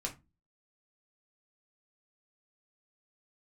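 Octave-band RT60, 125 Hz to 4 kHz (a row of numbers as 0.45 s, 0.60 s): 0.45 s, 0.40 s, 0.25 s, 0.25 s, 0.20 s, 0.15 s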